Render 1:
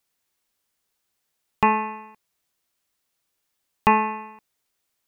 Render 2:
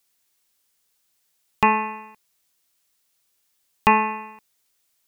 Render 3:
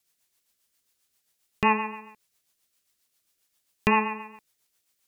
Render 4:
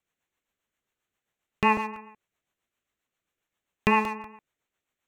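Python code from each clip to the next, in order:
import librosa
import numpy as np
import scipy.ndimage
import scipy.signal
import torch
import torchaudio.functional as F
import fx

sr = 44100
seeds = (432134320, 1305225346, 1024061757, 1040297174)

y1 = fx.high_shelf(x, sr, hz=2600.0, db=8.0)
y2 = fx.rotary(y1, sr, hz=7.5)
y3 = fx.wiener(y2, sr, points=9)
y3 = fx.buffer_crackle(y3, sr, first_s=0.44, period_s=0.19, block=64, kind='repeat')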